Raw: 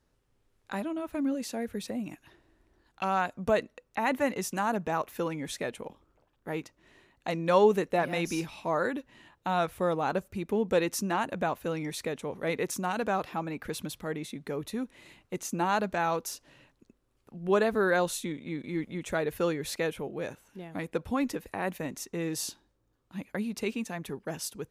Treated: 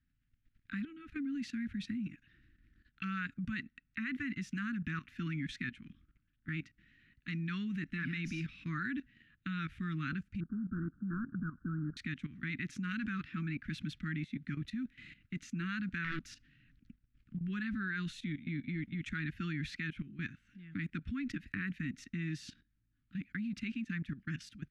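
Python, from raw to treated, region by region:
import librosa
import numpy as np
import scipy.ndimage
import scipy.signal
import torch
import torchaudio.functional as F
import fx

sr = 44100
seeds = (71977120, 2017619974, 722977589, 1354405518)

y = fx.chain(x, sr, fx.cvsd(bps=16000),
    fx.steep_lowpass(hz=1500.0, slope=96),
    fx.low_shelf(hz=110.0, db=-4.0), at=(10.4, 11.97))
y = fx.chain(y, sr, fx.low_shelf(hz=220.0, db=5.0),
    fx.doppler_dist(depth_ms=0.57), at=(16.04, 17.37))
y = scipy.signal.sosfilt(scipy.signal.cheby2(4, 50, [440.0, 920.0], 'bandstop', fs=sr, output='sos'), y)
y = fx.level_steps(y, sr, step_db=14)
y = scipy.signal.sosfilt(scipy.signal.butter(2, 2500.0, 'lowpass', fs=sr, output='sos'), y)
y = F.gain(torch.from_numpy(y), 5.5).numpy()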